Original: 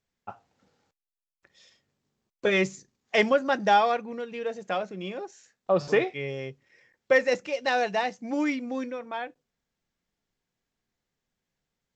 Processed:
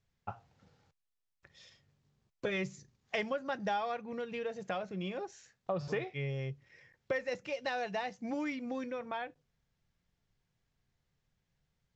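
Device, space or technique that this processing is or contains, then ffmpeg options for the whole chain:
jukebox: -af "lowpass=6700,lowshelf=frequency=180:width_type=q:width=1.5:gain=8,acompressor=threshold=-36dB:ratio=3"

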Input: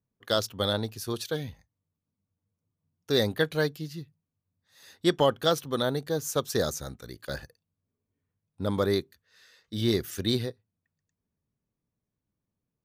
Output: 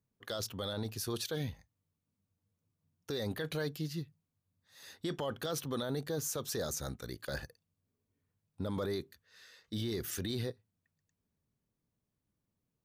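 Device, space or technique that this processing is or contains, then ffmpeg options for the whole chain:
stacked limiters: -af "alimiter=limit=-17.5dB:level=0:latency=1:release=13,alimiter=limit=-22dB:level=0:latency=1:release=48,alimiter=level_in=3.5dB:limit=-24dB:level=0:latency=1:release=12,volume=-3.5dB"

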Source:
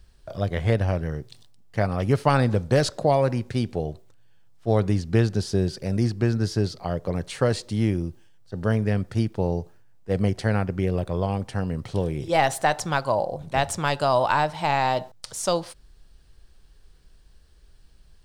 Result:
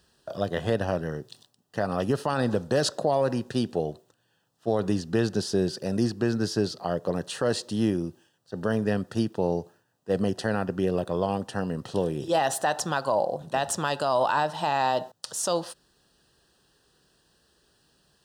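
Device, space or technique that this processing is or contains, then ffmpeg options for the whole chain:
PA system with an anti-feedback notch: -af "highpass=190,asuperstop=centerf=2200:order=4:qfactor=3.9,alimiter=limit=-15.5dB:level=0:latency=1:release=60,volume=1.5dB"

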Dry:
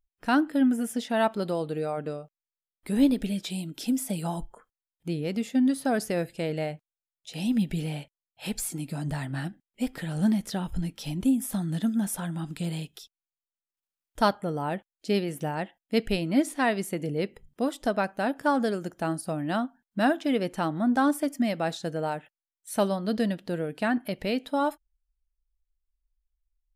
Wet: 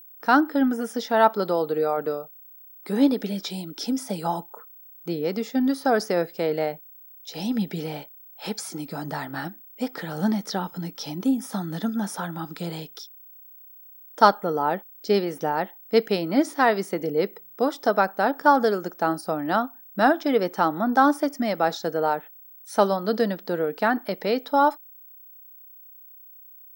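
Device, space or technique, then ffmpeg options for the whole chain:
old television with a line whistle: -af "highpass=frequency=190:width=0.5412,highpass=frequency=190:width=1.3066,equalizer=frequency=450:width_type=q:width=4:gain=5,equalizer=frequency=860:width_type=q:width=4:gain=6,equalizer=frequency=1300:width_type=q:width=4:gain=7,equalizer=frequency=2700:width_type=q:width=4:gain=-7,equalizer=frequency=5400:width_type=q:width=4:gain=7,equalizer=frequency=7800:width_type=q:width=4:gain=-9,lowpass=frequency=8800:width=0.5412,lowpass=frequency=8800:width=1.3066,aeval=exprs='val(0)+0.00398*sin(2*PI*15734*n/s)':channel_layout=same,equalizer=frequency=240:width_type=o:width=0.31:gain=-4.5,volume=3.5dB"

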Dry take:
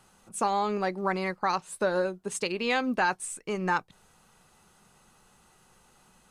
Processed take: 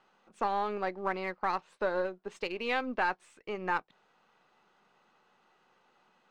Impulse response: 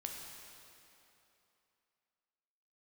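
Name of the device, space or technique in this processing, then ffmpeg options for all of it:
crystal radio: -af "highpass=300,lowpass=3400,lowpass=6400,aeval=exprs='if(lt(val(0),0),0.708*val(0),val(0))':channel_layout=same,volume=-2.5dB"

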